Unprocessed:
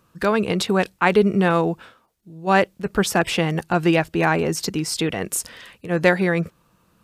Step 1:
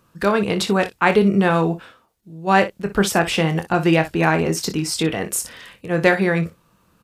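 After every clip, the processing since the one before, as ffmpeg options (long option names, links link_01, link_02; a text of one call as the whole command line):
ffmpeg -i in.wav -af "aecho=1:1:25|60:0.355|0.2,volume=1dB" out.wav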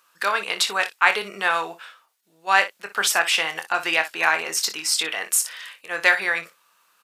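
ffmpeg -i in.wav -af "highpass=1200,volume=3.5dB" out.wav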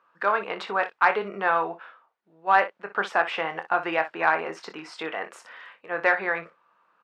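ffmpeg -i in.wav -af "lowpass=1200,acontrast=49,volume=-3dB" out.wav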